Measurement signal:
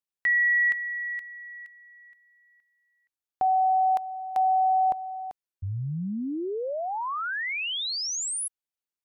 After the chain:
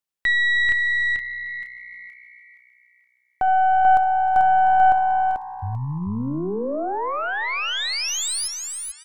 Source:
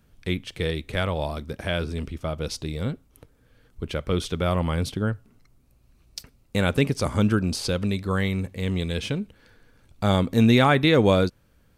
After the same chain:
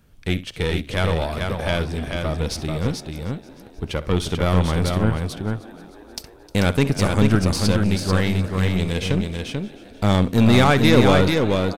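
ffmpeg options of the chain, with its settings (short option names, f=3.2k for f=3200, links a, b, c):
-filter_complex "[0:a]asplit=2[a][b];[b]asplit=6[c][d][e][f][g][h];[c]adelay=308,afreqshift=62,volume=-19.5dB[i];[d]adelay=616,afreqshift=124,volume=-23.5dB[j];[e]adelay=924,afreqshift=186,volume=-27.5dB[k];[f]adelay=1232,afreqshift=248,volume=-31.5dB[l];[g]adelay=1540,afreqshift=310,volume=-35.6dB[m];[h]adelay=1848,afreqshift=372,volume=-39.6dB[n];[i][j][k][l][m][n]amix=inputs=6:normalize=0[o];[a][o]amix=inputs=2:normalize=0,aeval=exprs='0.501*(cos(1*acos(clip(val(0)/0.501,-1,1)))-cos(1*PI/2))+0.0282*(cos(5*acos(clip(val(0)/0.501,-1,1)))-cos(5*PI/2))+0.0398*(cos(8*acos(clip(val(0)/0.501,-1,1)))-cos(8*PI/2))':c=same,asplit=2[p][q];[q]aecho=0:1:65|439:0.15|0.596[r];[p][r]amix=inputs=2:normalize=0,volume=1.5dB"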